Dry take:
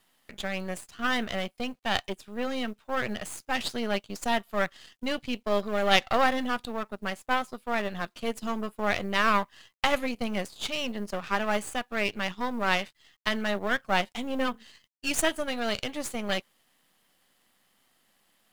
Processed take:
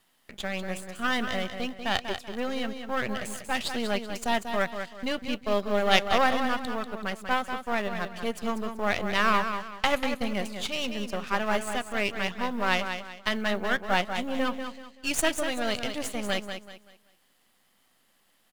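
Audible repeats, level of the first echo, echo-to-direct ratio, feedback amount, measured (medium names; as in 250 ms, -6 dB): 3, -8.0 dB, -7.5 dB, 32%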